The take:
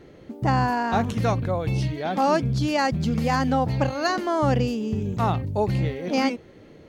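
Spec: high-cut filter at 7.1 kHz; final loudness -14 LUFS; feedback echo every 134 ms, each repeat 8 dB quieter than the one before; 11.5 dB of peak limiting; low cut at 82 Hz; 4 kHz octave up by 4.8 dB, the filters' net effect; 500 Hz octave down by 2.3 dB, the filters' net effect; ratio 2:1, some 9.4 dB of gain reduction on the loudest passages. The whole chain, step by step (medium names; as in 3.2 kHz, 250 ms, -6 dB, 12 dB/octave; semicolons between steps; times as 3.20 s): high-pass 82 Hz; low-pass 7.1 kHz; peaking EQ 500 Hz -3 dB; peaking EQ 4 kHz +6.5 dB; compression 2:1, threshold -36 dBFS; peak limiter -31 dBFS; feedback delay 134 ms, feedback 40%, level -8 dB; trim +24.5 dB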